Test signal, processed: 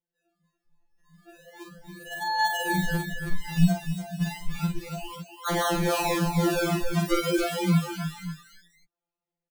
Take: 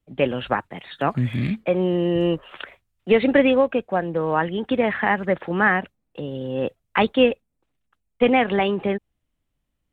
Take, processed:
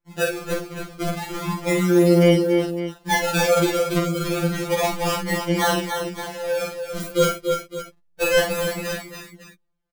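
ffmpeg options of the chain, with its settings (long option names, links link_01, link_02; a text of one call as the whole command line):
ffmpeg -i in.wav -filter_complex "[0:a]acrusher=samples=34:mix=1:aa=0.000001:lfo=1:lforange=34:lforate=0.32,asplit=2[link_01][link_02];[link_02]aecho=0:1:48|282|290|327|562:0.562|0.237|0.398|0.211|0.224[link_03];[link_01][link_03]amix=inputs=2:normalize=0,afftfilt=real='re*2.83*eq(mod(b,8),0)':imag='im*2.83*eq(mod(b,8),0)':win_size=2048:overlap=0.75" out.wav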